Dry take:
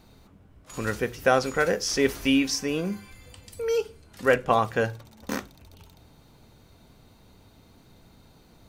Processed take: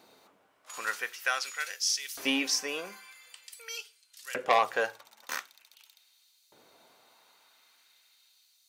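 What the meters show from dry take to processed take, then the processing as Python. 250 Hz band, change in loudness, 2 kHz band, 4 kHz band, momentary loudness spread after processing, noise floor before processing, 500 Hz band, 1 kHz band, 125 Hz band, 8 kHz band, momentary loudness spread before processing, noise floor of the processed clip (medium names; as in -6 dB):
-12.5 dB, -5.0 dB, -3.5 dB, 0.0 dB, 22 LU, -56 dBFS, -11.0 dB, -3.5 dB, under -25 dB, +0.5 dB, 13 LU, -67 dBFS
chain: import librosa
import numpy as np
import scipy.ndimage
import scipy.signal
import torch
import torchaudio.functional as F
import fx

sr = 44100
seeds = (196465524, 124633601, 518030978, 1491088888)

y = fx.filter_lfo_highpass(x, sr, shape='saw_up', hz=0.46, low_hz=390.0, high_hz=5000.0, q=0.91)
y = fx.transformer_sat(y, sr, knee_hz=2000.0)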